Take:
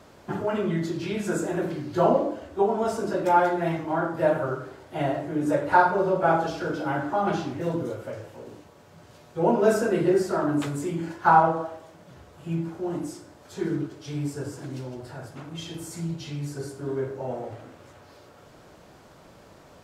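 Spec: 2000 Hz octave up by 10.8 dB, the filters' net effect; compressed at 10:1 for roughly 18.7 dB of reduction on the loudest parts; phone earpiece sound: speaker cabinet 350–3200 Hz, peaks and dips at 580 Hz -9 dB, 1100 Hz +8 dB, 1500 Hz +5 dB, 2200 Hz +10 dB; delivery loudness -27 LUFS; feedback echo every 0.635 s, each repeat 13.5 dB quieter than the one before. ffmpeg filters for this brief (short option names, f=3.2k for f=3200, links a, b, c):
-af "equalizer=f=2k:t=o:g=6.5,acompressor=threshold=-31dB:ratio=10,highpass=350,equalizer=f=580:t=q:w=4:g=-9,equalizer=f=1.1k:t=q:w=4:g=8,equalizer=f=1.5k:t=q:w=4:g=5,equalizer=f=2.2k:t=q:w=4:g=10,lowpass=f=3.2k:w=0.5412,lowpass=f=3.2k:w=1.3066,aecho=1:1:635|1270:0.211|0.0444,volume=9dB"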